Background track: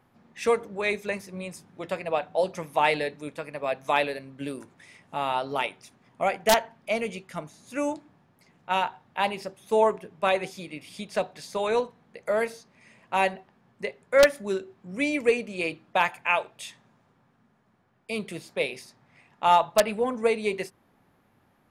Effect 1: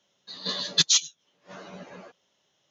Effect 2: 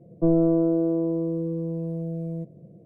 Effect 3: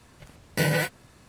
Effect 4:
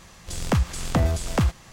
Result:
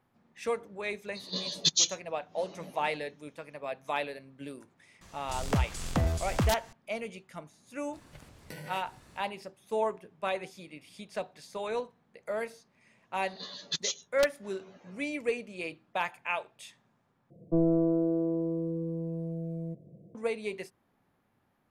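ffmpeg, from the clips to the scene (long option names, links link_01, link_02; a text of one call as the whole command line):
ffmpeg -i bed.wav -i cue0.wav -i cue1.wav -i cue2.wav -i cue3.wav -filter_complex "[1:a]asplit=2[link_01][link_02];[0:a]volume=-8.5dB[link_03];[link_01]equalizer=frequency=1500:width=1.7:gain=-14.5[link_04];[3:a]acompressor=threshold=-40dB:ratio=6:attack=3.2:release=140:knee=1:detection=peak[link_05];[link_03]asplit=2[link_06][link_07];[link_06]atrim=end=17.304[link_08];[2:a]atrim=end=2.85,asetpts=PTS-STARTPTS,volume=-5.5dB[link_09];[link_07]atrim=start=20.146[link_10];[link_04]atrim=end=2.7,asetpts=PTS-STARTPTS,volume=-3.5dB,afade=type=in:duration=0.004:curve=hsin,afade=type=out:start_time=2.696:duration=0.004:curve=hsin,adelay=870[link_11];[4:a]atrim=end=1.72,asetpts=PTS-STARTPTS,volume=-6.5dB,afade=type=in:duration=0.004:curve=hsin,afade=type=out:start_time=1.716:duration=0.004:curve=hsin,adelay=220941S[link_12];[link_05]atrim=end=1.28,asetpts=PTS-STARTPTS,volume=-2.5dB,afade=type=in:duration=0.004:curve=hsin,afade=type=out:start_time=1.276:duration=0.004:curve=hsin,adelay=7930[link_13];[link_02]atrim=end=2.7,asetpts=PTS-STARTPTS,volume=-12.5dB,afade=type=in:duration=0.004:curve=hsin,afade=type=out:start_time=2.696:duration=0.004:curve=hsin,adelay=12940[link_14];[link_08][link_09]acrossfade=duration=0.004:curve1=hsin:curve2=hsin[link_15];[link_15][link_10]acrossfade=duration=0.004:curve1=hsin:curve2=hsin[link_16];[link_16][link_11][link_12][link_13][link_14]amix=inputs=5:normalize=0" out.wav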